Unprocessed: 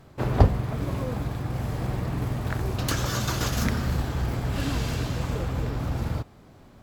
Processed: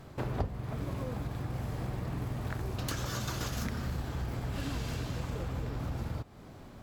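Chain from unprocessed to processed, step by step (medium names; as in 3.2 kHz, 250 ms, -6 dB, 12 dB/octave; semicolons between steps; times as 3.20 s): compression 3:1, threshold -37 dBFS, peak gain reduction 19.5 dB; trim +1.5 dB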